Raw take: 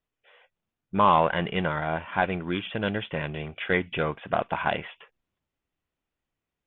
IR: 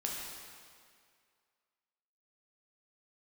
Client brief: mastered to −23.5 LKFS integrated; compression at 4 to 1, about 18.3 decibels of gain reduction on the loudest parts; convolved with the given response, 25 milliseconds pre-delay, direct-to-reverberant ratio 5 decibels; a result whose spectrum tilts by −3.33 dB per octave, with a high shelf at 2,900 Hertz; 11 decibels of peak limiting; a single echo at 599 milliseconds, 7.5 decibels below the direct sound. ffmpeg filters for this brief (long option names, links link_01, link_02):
-filter_complex "[0:a]highshelf=frequency=2900:gain=3,acompressor=threshold=-37dB:ratio=4,alimiter=level_in=9dB:limit=-24dB:level=0:latency=1,volume=-9dB,aecho=1:1:599:0.422,asplit=2[link_01][link_02];[1:a]atrim=start_sample=2205,adelay=25[link_03];[link_02][link_03]afir=irnorm=-1:irlink=0,volume=-7.5dB[link_04];[link_01][link_04]amix=inputs=2:normalize=0,volume=19.5dB"